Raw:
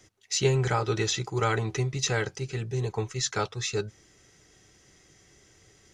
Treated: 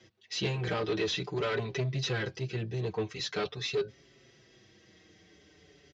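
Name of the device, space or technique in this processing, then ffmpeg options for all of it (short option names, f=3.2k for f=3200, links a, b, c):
barber-pole flanger into a guitar amplifier: -filter_complex "[0:a]asplit=2[a][b];[b]adelay=5.7,afreqshift=-0.44[c];[a][c]amix=inputs=2:normalize=1,asoftclip=type=tanh:threshold=-29.5dB,highpass=93,equalizer=f=110:t=q:w=4:g=-5,equalizer=f=850:t=q:w=4:g=-7,equalizer=f=1.3k:t=q:w=4:g=-7,equalizer=f=2.1k:t=q:w=4:g=-3,lowpass=f=4.5k:w=0.5412,lowpass=f=4.5k:w=1.3066,volume=5.5dB"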